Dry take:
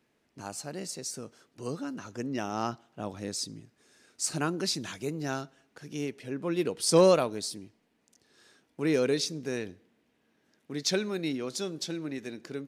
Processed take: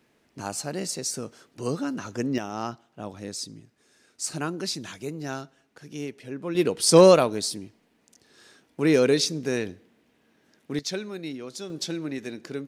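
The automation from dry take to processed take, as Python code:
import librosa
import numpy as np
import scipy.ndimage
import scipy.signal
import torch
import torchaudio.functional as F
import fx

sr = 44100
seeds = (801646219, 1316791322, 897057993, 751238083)

y = fx.gain(x, sr, db=fx.steps((0.0, 7.0), (2.38, 0.0), (6.55, 6.5), (10.79, -3.0), (11.7, 4.0)))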